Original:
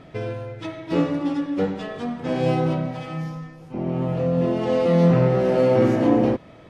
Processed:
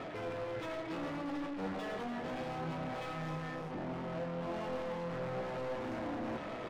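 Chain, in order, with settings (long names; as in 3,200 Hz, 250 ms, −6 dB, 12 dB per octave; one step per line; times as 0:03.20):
gain on one half-wave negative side −12 dB
dynamic equaliser 410 Hz, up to −7 dB, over −36 dBFS, Q 1.5
reversed playback
downward compressor 12 to 1, threshold −33 dBFS, peak gain reduction 18 dB
reversed playback
mid-hump overdrive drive 37 dB, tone 1,400 Hz, clips at −21.5 dBFS
flanger 0.67 Hz, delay 8.6 ms, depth 8.9 ms, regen +71%
on a send: single-tap delay 294 ms −10.5 dB
on the sum: level −6 dB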